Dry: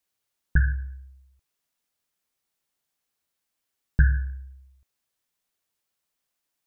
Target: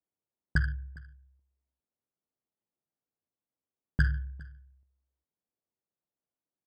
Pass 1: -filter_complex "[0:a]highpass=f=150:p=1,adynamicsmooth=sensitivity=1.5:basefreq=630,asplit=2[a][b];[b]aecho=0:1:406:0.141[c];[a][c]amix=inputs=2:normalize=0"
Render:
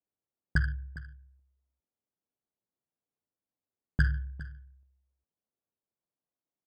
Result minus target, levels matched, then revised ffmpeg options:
echo-to-direct +6 dB
-filter_complex "[0:a]highpass=f=150:p=1,adynamicsmooth=sensitivity=1.5:basefreq=630,asplit=2[a][b];[b]aecho=0:1:406:0.0708[c];[a][c]amix=inputs=2:normalize=0"

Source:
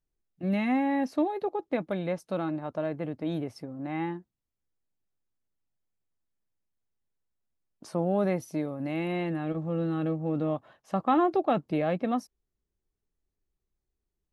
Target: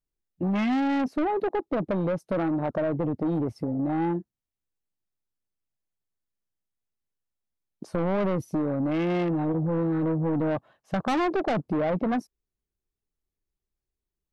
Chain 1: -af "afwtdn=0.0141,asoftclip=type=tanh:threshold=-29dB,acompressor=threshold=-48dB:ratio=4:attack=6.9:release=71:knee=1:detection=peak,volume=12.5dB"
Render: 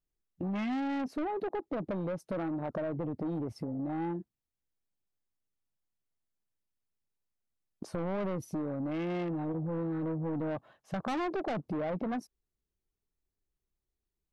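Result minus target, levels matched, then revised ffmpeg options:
compressor: peak gain reduction +8 dB
-af "afwtdn=0.0141,asoftclip=type=tanh:threshold=-29dB,acompressor=threshold=-37dB:ratio=4:attack=6.9:release=71:knee=1:detection=peak,volume=12.5dB"

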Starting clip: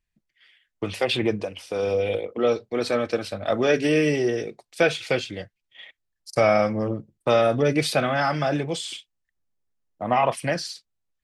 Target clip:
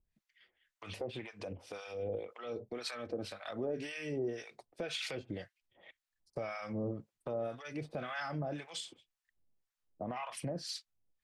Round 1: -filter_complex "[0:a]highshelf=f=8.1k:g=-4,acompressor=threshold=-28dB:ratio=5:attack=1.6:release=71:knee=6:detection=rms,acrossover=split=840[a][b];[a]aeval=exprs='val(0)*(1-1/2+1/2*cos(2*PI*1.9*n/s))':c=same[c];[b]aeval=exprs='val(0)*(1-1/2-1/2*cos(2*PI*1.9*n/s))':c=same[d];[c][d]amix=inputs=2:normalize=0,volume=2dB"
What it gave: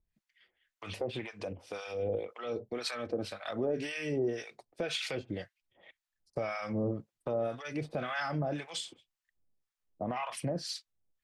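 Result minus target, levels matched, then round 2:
compressor: peak gain reduction -5 dB
-filter_complex "[0:a]highshelf=f=8.1k:g=-4,acompressor=threshold=-34dB:ratio=5:attack=1.6:release=71:knee=6:detection=rms,acrossover=split=840[a][b];[a]aeval=exprs='val(0)*(1-1/2+1/2*cos(2*PI*1.9*n/s))':c=same[c];[b]aeval=exprs='val(0)*(1-1/2-1/2*cos(2*PI*1.9*n/s))':c=same[d];[c][d]amix=inputs=2:normalize=0,volume=2dB"

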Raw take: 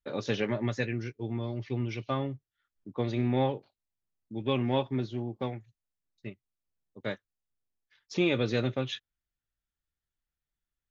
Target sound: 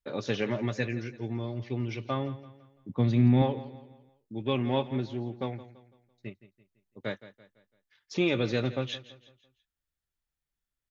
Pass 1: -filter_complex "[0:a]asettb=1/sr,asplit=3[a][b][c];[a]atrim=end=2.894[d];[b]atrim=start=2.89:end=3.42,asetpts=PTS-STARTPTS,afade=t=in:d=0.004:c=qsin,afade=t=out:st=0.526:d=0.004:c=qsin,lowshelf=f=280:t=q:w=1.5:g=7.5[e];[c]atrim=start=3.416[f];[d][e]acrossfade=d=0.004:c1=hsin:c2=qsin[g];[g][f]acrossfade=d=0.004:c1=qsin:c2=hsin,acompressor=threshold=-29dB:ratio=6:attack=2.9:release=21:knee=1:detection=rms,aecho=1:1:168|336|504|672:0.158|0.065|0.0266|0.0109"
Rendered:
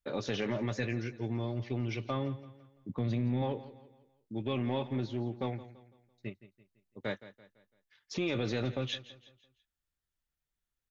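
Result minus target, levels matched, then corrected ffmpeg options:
compressor: peak gain reduction +11.5 dB
-filter_complex "[0:a]asettb=1/sr,asplit=3[a][b][c];[a]atrim=end=2.894[d];[b]atrim=start=2.89:end=3.42,asetpts=PTS-STARTPTS,afade=t=in:d=0.004:c=qsin,afade=t=out:st=0.526:d=0.004:c=qsin,lowshelf=f=280:t=q:w=1.5:g=7.5[e];[c]atrim=start=3.416[f];[d][e]acrossfade=d=0.004:c1=hsin:c2=qsin[g];[g][f]acrossfade=d=0.004:c1=qsin:c2=hsin,aecho=1:1:168|336|504|672:0.158|0.065|0.0266|0.0109"

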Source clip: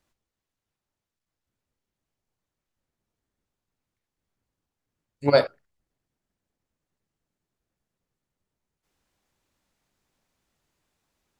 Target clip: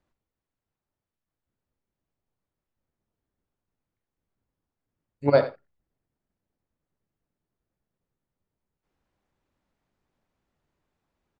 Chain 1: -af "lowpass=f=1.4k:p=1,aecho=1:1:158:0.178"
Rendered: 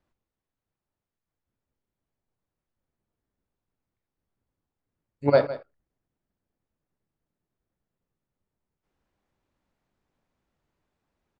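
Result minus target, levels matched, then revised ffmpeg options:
echo 73 ms late
-af "lowpass=f=1.4k:p=1,aecho=1:1:85:0.178"

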